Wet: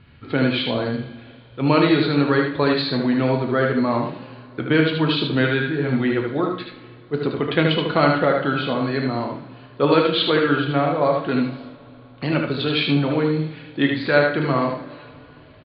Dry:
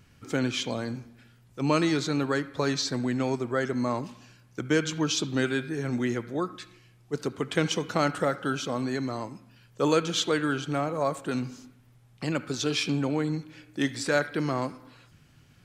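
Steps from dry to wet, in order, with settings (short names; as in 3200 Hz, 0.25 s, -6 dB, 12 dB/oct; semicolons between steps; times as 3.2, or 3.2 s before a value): steep low-pass 4400 Hz 96 dB/oct; echo 76 ms -5 dB; on a send at -4 dB: reverb, pre-delay 3 ms; on the sum: gain +6 dB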